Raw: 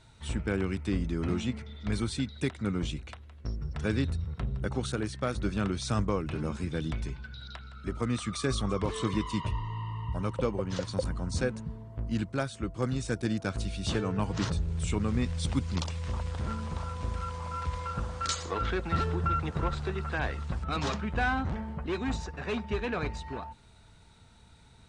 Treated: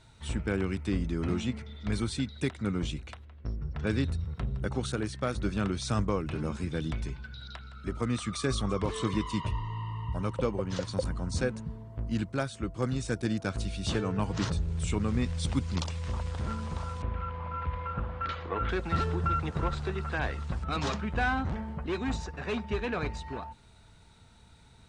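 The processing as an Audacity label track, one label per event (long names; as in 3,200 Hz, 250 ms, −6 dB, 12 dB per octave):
3.250000	3.870000	high-frequency loss of the air 170 metres
17.020000	18.690000	low-pass filter 2,800 Hz 24 dB per octave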